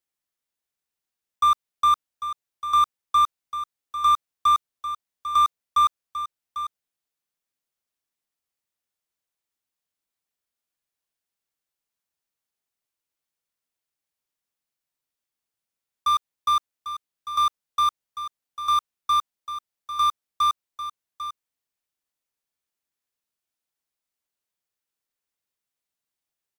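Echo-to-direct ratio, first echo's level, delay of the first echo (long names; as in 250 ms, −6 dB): −11.5 dB, −11.5 dB, 797 ms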